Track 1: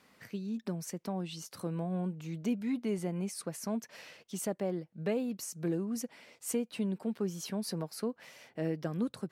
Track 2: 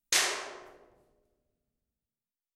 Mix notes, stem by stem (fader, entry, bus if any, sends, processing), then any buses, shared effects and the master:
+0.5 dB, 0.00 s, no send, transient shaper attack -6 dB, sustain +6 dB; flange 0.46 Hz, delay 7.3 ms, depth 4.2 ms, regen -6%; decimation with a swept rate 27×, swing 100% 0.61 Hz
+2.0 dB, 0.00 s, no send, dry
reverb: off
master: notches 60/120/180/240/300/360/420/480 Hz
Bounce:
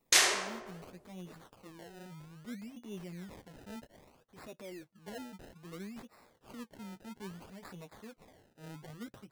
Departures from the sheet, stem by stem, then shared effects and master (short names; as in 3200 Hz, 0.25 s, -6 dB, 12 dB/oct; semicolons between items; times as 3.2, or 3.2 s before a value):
stem 1 +0.5 dB -> -8.5 dB; master: missing notches 60/120/180/240/300/360/420/480 Hz